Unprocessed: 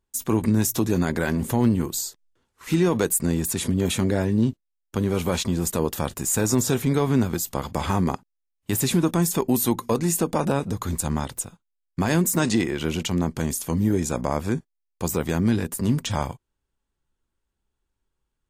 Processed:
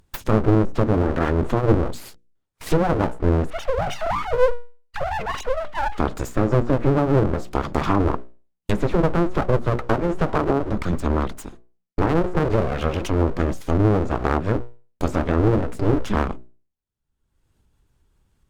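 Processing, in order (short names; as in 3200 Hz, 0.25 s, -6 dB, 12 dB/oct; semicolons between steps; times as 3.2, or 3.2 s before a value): 3.5–5.98 sine-wave speech; expander -42 dBFS; treble ducked by the level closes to 690 Hz, closed at -17 dBFS; low shelf 230 Hz +9.5 dB; upward compressor, threshold -28 dBFS; notches 60/120/180/240/300/360/420/480/540 Hz; full-wave rectifier; dynamic EQ 1300 Hz, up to +5 dB, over -45 dBFS, Q 2.5; gain +2.5 dB; Opus 64 kbps 48000 Hz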